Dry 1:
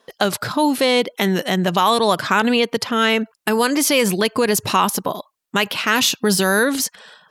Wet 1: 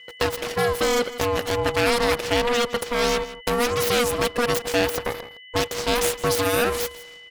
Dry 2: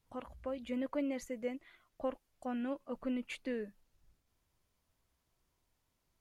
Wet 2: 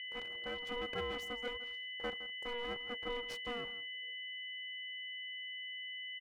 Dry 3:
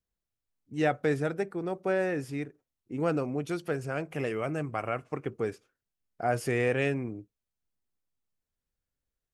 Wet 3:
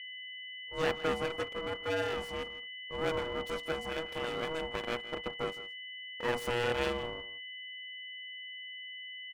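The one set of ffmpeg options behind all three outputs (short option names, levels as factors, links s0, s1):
-filter_complex "[0:a]asplit=2[s0][s1];[s1]adelay=163.3,volume=0.178,highshelf=f=4000:g=-3.67[s2];[s0][s2]amix=inputs=2:normalize=0,aeval=exprs='abs(val(0))':c=same,aeval=exprs='val(0)+0.0112*sin(2*PI*2500*n/s)':c=same,aeval=exprs='val(0)*sin(2*PI*480*n/s)':c=same,bandreject=f=460:w=12"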